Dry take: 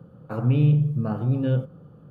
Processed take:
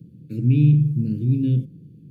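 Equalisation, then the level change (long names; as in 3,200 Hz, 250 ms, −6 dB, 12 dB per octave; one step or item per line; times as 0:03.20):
high-pass filter 80 Hz
elliptic band-stop filter 340–2,500 Hz, stop band 60 dB
parametric band 3,000 Hz −10.5 dB 0.3 octaves
+4.5 dB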